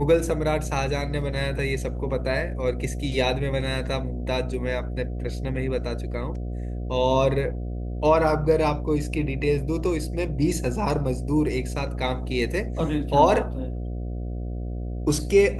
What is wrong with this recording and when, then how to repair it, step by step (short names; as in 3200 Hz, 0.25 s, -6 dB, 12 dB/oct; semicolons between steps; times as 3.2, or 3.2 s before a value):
buzz 60 Hz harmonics 12 -30 dBFS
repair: de-hum 60 Hz, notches 12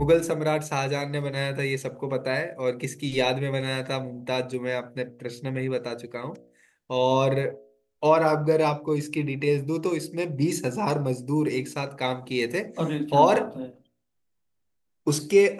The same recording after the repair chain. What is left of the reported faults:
none